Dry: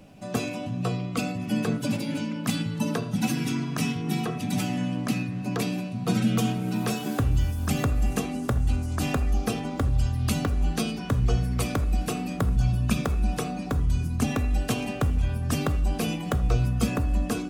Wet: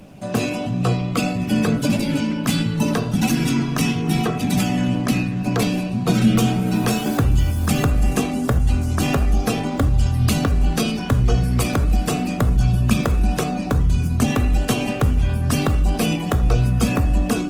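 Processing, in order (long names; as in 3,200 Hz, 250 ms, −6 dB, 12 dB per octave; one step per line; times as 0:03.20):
in parallel at −3 dB: brickwall limiter −19.5 dBFS, peak gain reduction 8.5 dB
on the sum: flanger 1.5 Hz, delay 4.1 ms, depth 5.9 ms, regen +82%
level +8 dB
Opus 20 kbit/s 48,000 Hz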